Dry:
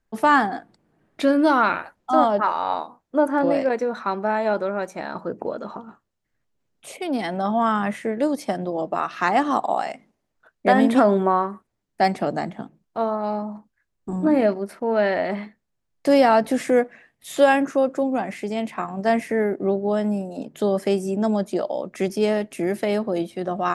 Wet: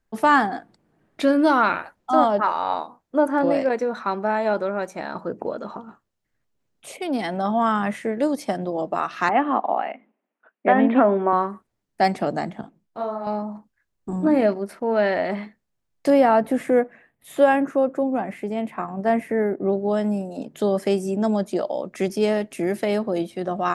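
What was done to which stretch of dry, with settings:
9.29–11.33 s: elliptic band-pass 220–2700 Hz
12.61–13.27 s: detune thickener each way 33 cents
16.10–19.73 s: peaking EQ 5.4 kHz -13 dB 1.7 oct

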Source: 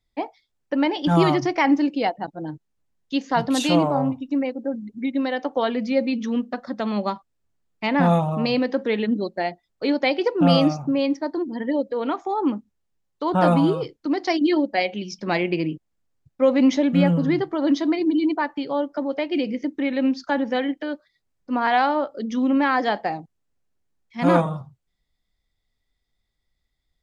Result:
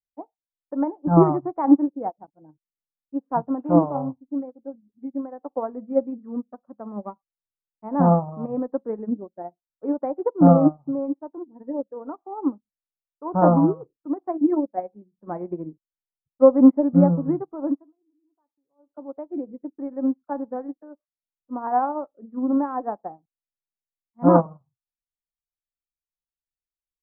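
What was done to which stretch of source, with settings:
17.64–19.04 s: dip -21.5 dB, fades 0.29 s
whole clip: steep low-pass 1.2 kHz 36 dB/octave; upward expansion 2.5:1, over -36 dBFS; trim +6 dB

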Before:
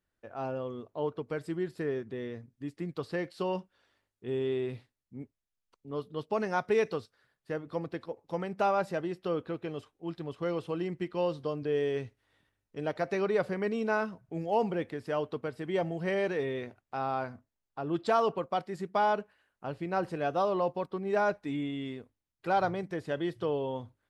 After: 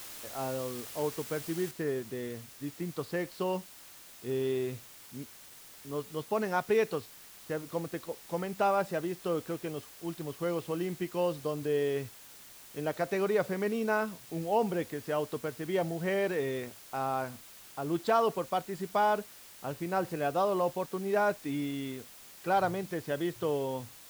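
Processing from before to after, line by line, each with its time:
1.71 s: noise floor step -45 dB -52 dB

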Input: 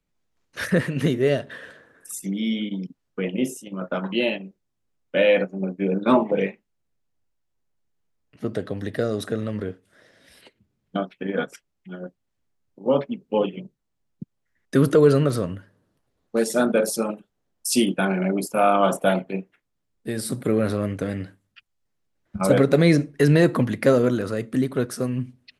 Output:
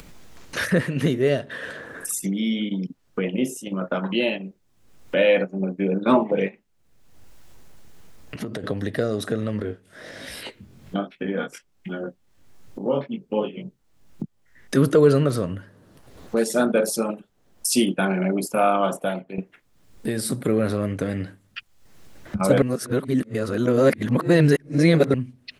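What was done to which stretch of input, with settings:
6.48–8.64 s: compression, threshold -37 dBFS
9.62–14.77 s: chorus 1.3 Hz, delay 18.5 ms, depth 4.1 ms
18.56–19.38 s: fade out linear, to -15.5 dB
22.62–25.14 s: reverse
whole clip: upward compressor, threshold -20 dBFS

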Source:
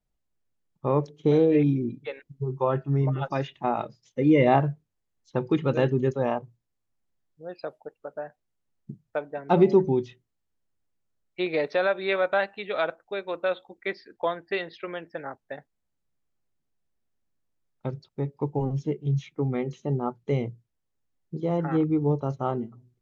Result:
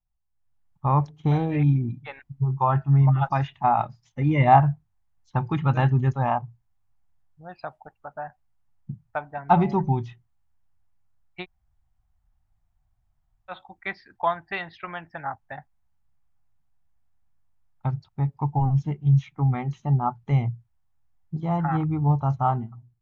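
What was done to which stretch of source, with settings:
11.43–13.51 s: room tone, crossfade 0.06 s
whole clip: FFT filter 100 Hz 0 dB, 490 Hz -26 dB, 770 Hz -3 dB, 4.1 kHz -16 dB; level rider gain up to 12.5 dB

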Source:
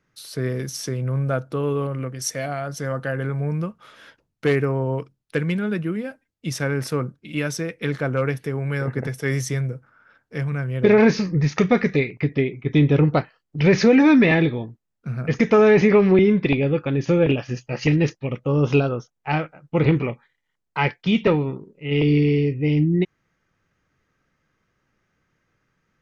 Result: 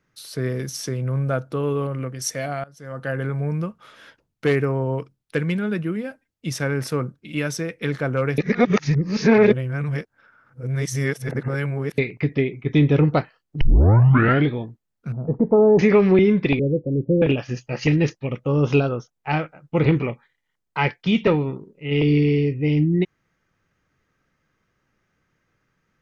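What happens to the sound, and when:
2.64–3.10 s: fade in quadratic, from -19.5 dB
8.38–11.98 s: reverse
13.61 s: tape start 0.90 s
15.12–15.79 s: Chebyshev low-pass 930 Hz, order 4
16.59–17.22 s: steep low-pass 560 Hz 48 dB/octave

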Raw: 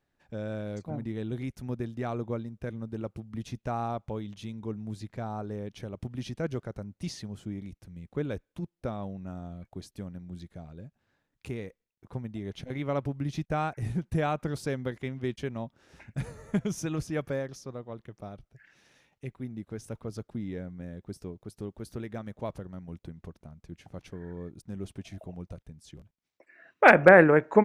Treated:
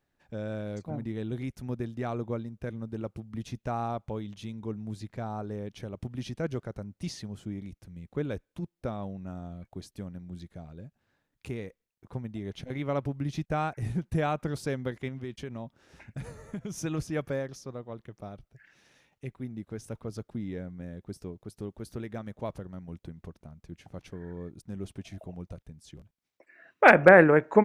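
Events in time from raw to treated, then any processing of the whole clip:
15.08–16.84 s: compression 4:1, threshold -33 dBFS

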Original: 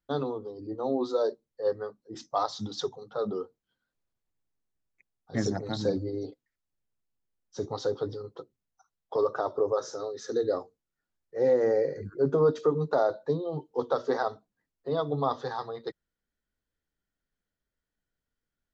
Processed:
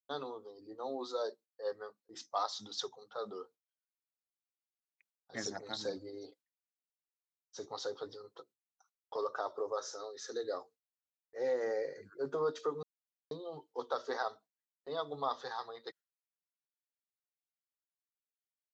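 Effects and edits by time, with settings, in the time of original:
12.83–13.31 s: mute
whole clip: high-pass 1.3 kHz 6 dB/octave; gate with hold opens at -55 dBFS; trim -1.5 dB

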